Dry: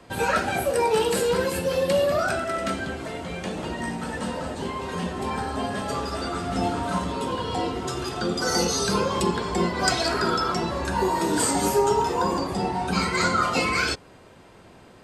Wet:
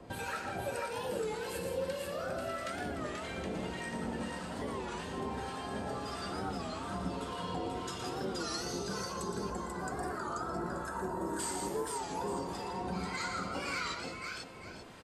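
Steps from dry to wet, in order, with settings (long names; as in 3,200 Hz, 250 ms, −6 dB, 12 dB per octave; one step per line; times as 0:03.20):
0:09.01–0:11.39: flat-topped bell 3,500 Hz −13 dB
downward compressor 4 to 1, threshold −36 dBFS, peak gain reduction 16 dB
two-band tremolo in antiphase 1.7 Hz, depth 70%, crossover 940 Hz
multi-tap delay 117/165/488/881 ms −7/−9.5/−4/−13.5 dB
wow of a warped record 33 1/3 rpm, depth 160 cents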